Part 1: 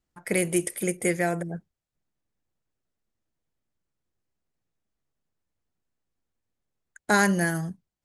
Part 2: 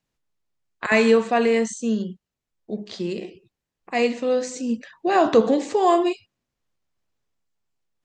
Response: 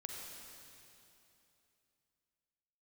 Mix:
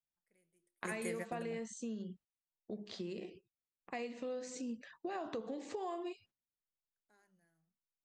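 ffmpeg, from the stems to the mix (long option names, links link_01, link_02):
-filter_complex "[0:a]flanger=delay=7.3:depth=6.2:regen=83:speed=1.4:shape=sinusoidal,bandreject=frequency=50:width_type=h:width=6,bandreject=frequency=100:width_type=h:width=6,bandreject=frequency=150:width_type=h:width=6,bandreject=frequency=200:width_type=h:width=6,bandreject=frequency=250:width_type=h:width=6,bandreject=frequency=300:width_type=h:width=6,bandreject=frequency=350:width_type=h:width=6,volume=-6dB[link_01];[1:a]agate=range=-16dB:threshold=-46dB:ratio=16:detection=peak,highshelf=frequency=6900:gain=-4.5,acompressor=threshold=-26dB:ratio=5,volume=-8dB,asplit=2[link_02][link_03];[link_03]apad=whole_len=354724[link_04];[link_01][link_04]sidechaingate=range=-41dB:threshold=-39dB:ratio=16:detection=peak[link_05];[link_05][link_02]amix=inputs=2:normalize=0,acompressor=threshold=-47dB:ratio=1.5"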